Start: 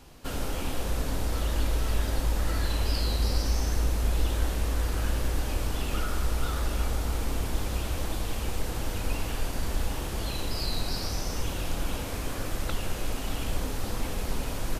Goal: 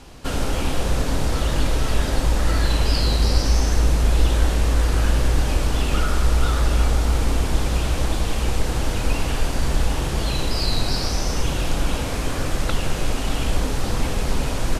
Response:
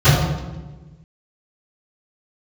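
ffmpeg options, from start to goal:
-filter_complex "[0:a]lowpass=9800,asplit=2[link_01][link_02];[1:a]atrim=start_sample=2205[link_03];[link_02][link_03]afir=irnorm=-1:irlink=0,volume=-48dB[link_04];[link_01][link_04]amix=inputs=2:normalize=0,volume=8.5dB"

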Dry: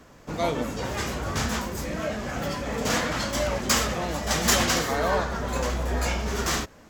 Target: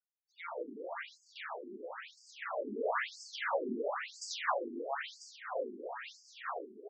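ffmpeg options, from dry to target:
ffmpeg -i in.wav -filter_complex "[0:a]equalizer=frequency=5300:width=0.49:gain=-3,aecho=1:1:519|1038|1557|2076|2595:0.447|0.197|0.0865|0.0381|0.0167,asettb=1/sr,asplit=3[link_01][link_02][link_03];[link_01]atrim=end=2.174[link_04];[link_02]atrim=start=2.17:end=4.55,asetpts=PTS-STARTPTS,afade=type=in:duration=0.004:curve=qsin,afade=type=out:start_time=2.376:duration=0.004:curve=qsin,acontrast=30[link_05];[link_03]atrim=start=4.546[link_06];[link_04][link_05]acrossfade=duration=0.004:curve1=hsin:curve2=qsin[link_07];[link_07][link_06]acrossfade=duration=0.004:curve1=qsin:curve2=hsin,afftfilt=real='re*gte(hypot(re,im),0.00501)':imag='im*gte(hypot(re,im),0.00501)':win_size=1024:overlap=0.75,bass=frequency=250:gain=-12,treble=frequency=4000:gain=-12,afftfilt=real='re*between(b*sr/1024,290*pow(6600/290,0.5+0.5*sin(2*PI*1*pts/sr))/1.41,290*pow(6600/290,0.5+0.5*sin(2*PI*1*pts/sr))*1.41)':imag='im*between(b*sr/1024,290*pow(6600/290,0.5+0.5*sin(2*PI*1*pts/sr))/1.41,290*pow(6600/290,0.5+0.5*sin(2*PI*1*pts/sr))*1.41)':win_size=1024:overlap=0.75,volume=-5.5dB" out.wav

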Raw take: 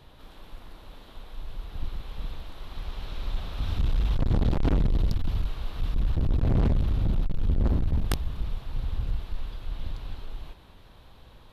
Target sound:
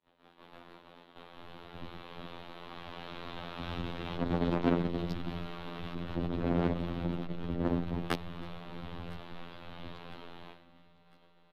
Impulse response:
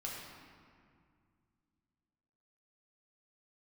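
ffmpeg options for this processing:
-filter_complex "[0:a]afftfilt=real='hypot(re,im)*cos(PI*b)':imag='0':win_size=2048:overlap=0.75,asplit=2[link_01][link_02];[link_02]adelay=319,lowpass=frequency=3700:poles=1,volume=-20dB,asplit=2[link_03][link_04];[link_04]adelay=319,lowpass=frequency=3700:poles=1,volume=0.34,asplit=2[link_05][link_06];[link_06]adelay=319,lowpass=frequency=3700:poles=1,volume=0.34[link_07];[link_03][link_05][link_07]amix=inputs=3:normalize=0[link_08];[link_01][link_08]amix=inputs=2:normalize=0,agate=range=-33dB:threshold=-42dB:ratio=3:detection=peak,acrossover=split=170 3600:gain=0.1 1 0.2[link_09][link_10][link_11];[link_09][link_10][link_11]amix=inputs=3:normalize=0,asplit=2[link_12][link_13];[link_13]aecho=0:1:1005|2010|3015:0.0891|0.0401|0.018[link_14];[link_12][link_14]amix=inputs=2:normalize=0,volume=5.5dB"

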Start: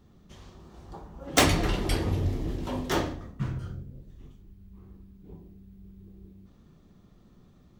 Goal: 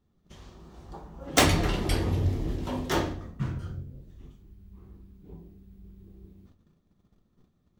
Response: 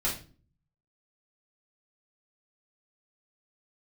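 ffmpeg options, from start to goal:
-filter_complex "[0:a]agate=range=-14dB:threshold=-53dB:ratio=16:detection=peak,asplit=2[link_01][link_02];[1:a]atrim=start_sample=2205,adelay=12[link_03];[link_02][link_03]afir=irnorm=-1:irlink=0,volume=-22.5dB[link_04];[link_01][link_04]amix=inputs=2:normalize=0"

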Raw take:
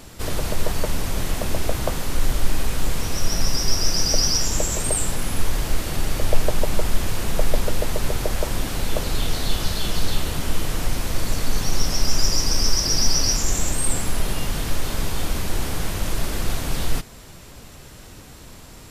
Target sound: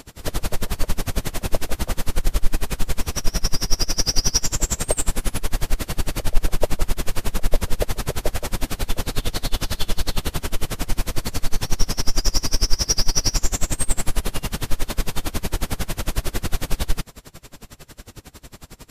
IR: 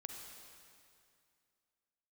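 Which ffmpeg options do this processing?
-af "acontrast=54,aeval=exprs='val(0)*pow(10,-28*(0.5-0.5*cos(2*PI*11*n/s))/20)':channel_layout=same"

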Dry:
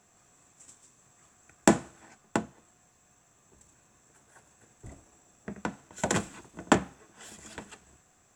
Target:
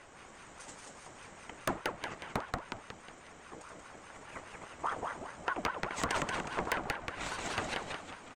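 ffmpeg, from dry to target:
ffmpeg -i in.wav -filter_complex "[0:a]acompressor=threshold=-40dB:ratio=12,asplit=2[link_01][link_02];[link_02]asplit=6[link_03][link_04][link_05][link_06][link_07][link_08];[link_03]adelay=182,afreqshift=35,volume=-4dB[link_09];[link_04]adelay=364,afreqshift=70,volume=-10.6dB[link_10];[link_05]adelay=546,afreqshift=105,volume=-17.1dB[link_11];[link_06]adelay=728,afreqshift=140,volume=-23.7dB[link_12];[link_07]adelay=910,afreqshift=175,volume=-30.2dB[link_13];[link_08]adelay=1092,afreqshift=210,volume=-36.8dB[link_14];[link_09][link_10][link_11][link_12][link_13][link_14]amix=inputs=6:normalize=0[link_15];[link_01][link_15]amix=inputs=2:normalize=0,adynamicsmooth=sensitivity=4:basefreq=4400,aeval=exprs='0.119*sin(PI/2*3.98*val(0)/0.119)':channel_layout=same,aeval=exprs='val(0)*sin(2*PI*840*n/s+840*0.55/4.9*sin(2*PI*4.9*n/s))':channel_layout=same,volume=-1dB" out.wav

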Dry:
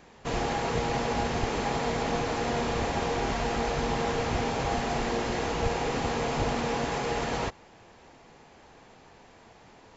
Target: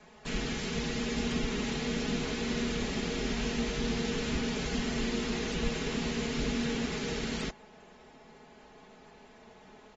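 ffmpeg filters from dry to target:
ffmpeg -i in.wav -filter_complex "[0:a]asettb=1/sr,asplit=3[link_01][link_02][link_03];[link_01]atrim=end=3.154[link_04];[link_02]atrim=start=3.15:end=4.17,asetpts=PTS-STARTPTS,afade=type=in:duration=0.004:curve=qsin,afade=type=out:start_time=1.016:duration=0.004:curve=qsin,bandreject=frequency=1100:width=6.4[link_05];[link_03]atrim=start=4.166[link_06];[link_04][link_05]acrossfade=duration=0.004:curve1=hsin:curve2=qsin[link_07];[link_07][link_06]acrossfade=duration=0.004:curve1=qsin:curve2=hsin,aecho=1:1:4.7:0.99,acrossover=split=250|340|1800[link_08][link_09][link_10][link_11];[link_08]crystalizer=i=10:c=0[link_12];[link_09]dynaudnorm=framelen=650:gausssize=3:maxgain=6.5dB[link_13];[link_10]aeval=exprs='(mod(42.2*val(0)+1,2)-1)/42.2':channel_layout=same[link_14];[link_12][link_13][link_14][link_11]amix=inputs=4:normalize=0,volume=-5.5dB" -ar 48000 -c:a aac -b:a 24k out.aac

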